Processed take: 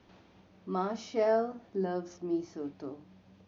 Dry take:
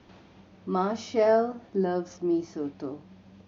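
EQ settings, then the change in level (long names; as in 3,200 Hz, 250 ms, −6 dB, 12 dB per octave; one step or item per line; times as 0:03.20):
mains-hum notches 50/100/150/200/250/300/350 Hz
−5.5 dB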